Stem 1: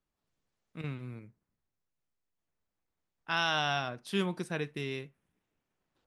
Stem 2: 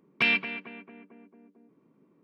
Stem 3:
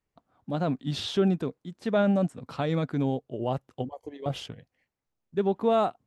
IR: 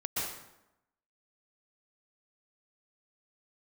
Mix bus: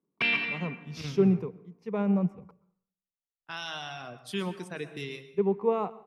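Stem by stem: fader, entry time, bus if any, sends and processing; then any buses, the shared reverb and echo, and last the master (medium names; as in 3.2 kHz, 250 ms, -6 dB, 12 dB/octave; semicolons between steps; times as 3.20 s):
+1.5 dB, 0.20 s, send -13 dB, peak limiter -24.5 dBFS, peak gain reduction 9 dB; reverb removal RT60 1.3 s
+1.5 dB, 0.00 s, send -10 dB, treble shelf 4.5 kHz -9 dB; peak limiter -19 dBFS, peak gain reduction 5.5 dB; auto duck -16 dB, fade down 0.90 s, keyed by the third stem
-8.5 dB, 0.00 s, muted 2.51–4.89 s, send -20.5 dB, rippled EQ curve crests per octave 0.81, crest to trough 12 dB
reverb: on, RT60 0.90 s, pre-delay 112 ms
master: three bands expanded up and down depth 70%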